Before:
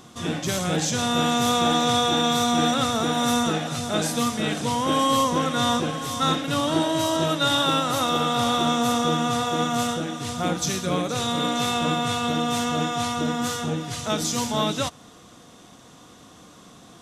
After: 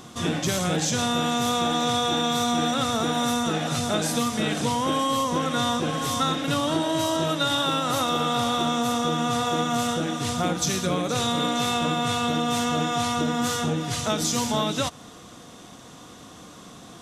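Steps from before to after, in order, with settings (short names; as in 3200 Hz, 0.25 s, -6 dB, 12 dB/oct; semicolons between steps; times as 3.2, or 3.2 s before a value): compressor, threshold -24 dBFS, peak gain reduction 7.5 dB; gain +3.5 dB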